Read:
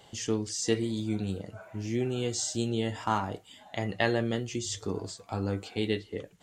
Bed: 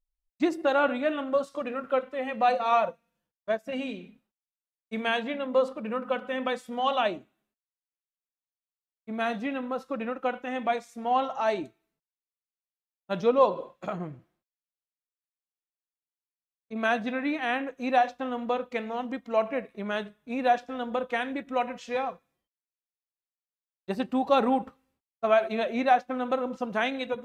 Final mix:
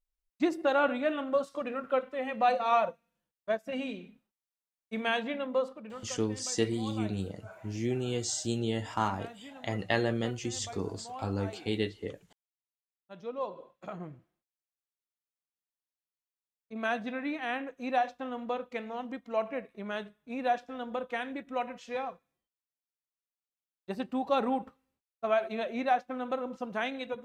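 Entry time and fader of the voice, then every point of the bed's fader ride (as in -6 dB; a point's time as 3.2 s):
5.90 s, -1.5 dB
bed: 5.42 s -2.5 dB
6.23 s -18 dB
13.13 s -18 dB
14.1 s -5.5 dB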